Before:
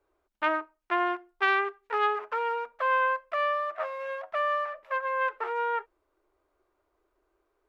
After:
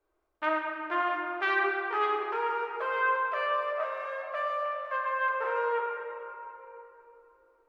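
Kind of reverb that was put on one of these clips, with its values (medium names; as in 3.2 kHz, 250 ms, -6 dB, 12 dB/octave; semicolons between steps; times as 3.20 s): simulated room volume 200 m³, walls hard, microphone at 0.56 m; trim -5 dB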